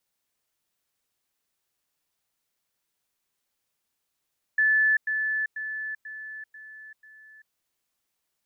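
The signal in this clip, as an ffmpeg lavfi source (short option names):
-f lavfi -i "aevalsrc='pow(10,(-18-6*floor(t/0.49))/20)*sin(2*PI*1740*t)*clip(min(mod(t,0.49),0.39-mod(t,0.49))/0.005,0,1)':d=2.94:s=44100"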